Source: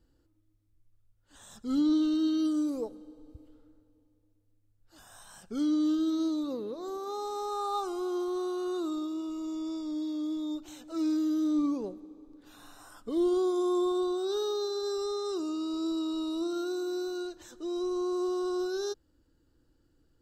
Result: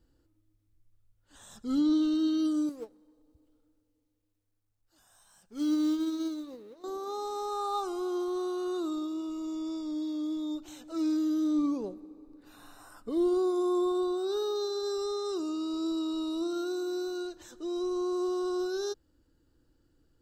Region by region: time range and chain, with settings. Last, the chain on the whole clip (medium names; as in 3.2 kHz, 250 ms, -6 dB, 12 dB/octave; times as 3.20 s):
2.69–6.84 s: companding laws mixed up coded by mu + tone controls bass -1 dB, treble +4 dB + upward expansion 2.5:1, over -37 dBFS
11.94–14.56 s: peaking EQ 6.3 kHz -4.5 dB 0.55 oct + band-stop 3.3 kHz, Q 5.9
whole clip: none